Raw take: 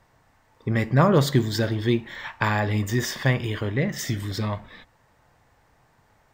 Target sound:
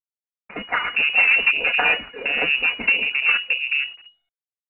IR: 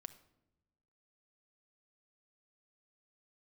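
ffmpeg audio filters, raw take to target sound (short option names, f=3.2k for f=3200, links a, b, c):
-filter_complex "[0:a]afftdn=nr=35:nf=-36,aecho=1:1:5.6:0.74,acompressor=threshold=-38dB:ratio=1.5,aresample=11025,acrusher=bits=4:mode=log:mix=0:aa=0.000001,aresample=44100,acrossover=split=620[a][b];[a]adelay=630[c];[c][b]amix=inputs=2:normalize=0,acrusher=bits=9:mix=0:aa=0.000001,aeval=exprs='0.178*(cos(1*acos(clip(val(0)/0.178,-1,1)))-cos(1*PI/2))+0.0501*(cos(2*acos(clip(val(0)/0.178,-1,1)))-cos(2*PI/2))+0.0158*(cos(3*acos(clip(val(0)/0.178,-1,1)))-cos(3*PI/2))+0.0158*(cos(8*acos(clip(val(0)/0.178,-1,1)))-cos(8*PI/2))':c=same,asetrate=59535,aresample=44100,lowpass=f=2.5k:t=q:w=0.5098,lowpass=f=2.5k:t=q:w=0.6013,lowpass=f=2.5k:t=q:w=0.9,lowpass=f=2.5k:t=q:w=2.563,afreqshift=-2900,alimiter=level_in=18dB:limit=-1dB:release=50:level=0:latency=1,volume=-5.5dB" -ar 8000 -c:a pcm_mulaw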